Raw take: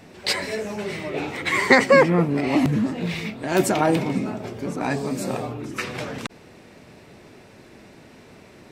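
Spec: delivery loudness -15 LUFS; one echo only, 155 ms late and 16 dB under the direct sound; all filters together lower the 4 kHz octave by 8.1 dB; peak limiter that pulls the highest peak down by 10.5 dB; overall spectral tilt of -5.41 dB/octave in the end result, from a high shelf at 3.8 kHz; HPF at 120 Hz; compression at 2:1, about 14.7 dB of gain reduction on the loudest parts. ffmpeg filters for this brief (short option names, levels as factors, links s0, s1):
-af "highpass=120,highshelf=f=3800:g=-5,equalizer=f=4000:t=o:g=-7,acompressor=threshold=0.0126:ratio=2,alimiter=level_in=1.26:limit=0.0631:level=0:latency=1,volume=0.794,aecho=1:1:155:0.158,volume=11.2"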